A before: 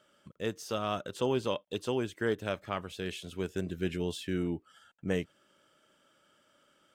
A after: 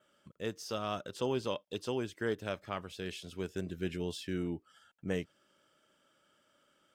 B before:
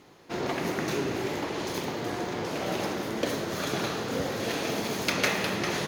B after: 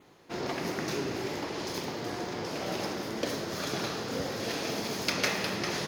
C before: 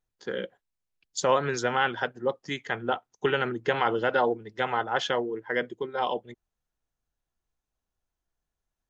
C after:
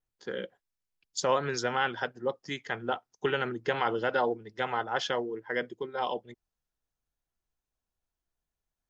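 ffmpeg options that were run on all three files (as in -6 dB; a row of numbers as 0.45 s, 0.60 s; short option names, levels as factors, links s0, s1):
-af "adynamicequalizer=threshold=0.00141:dfrequency=5100:dqfactor=3.5:tfrequency=5100:tqfactor=3.5:attack=5:release=100:ratio=0.375:range=3.5:mode=boostabove:tftype=bell,volume=0.668"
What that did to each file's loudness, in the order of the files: -3.5 LU, -3.0 LU, -3.5 LU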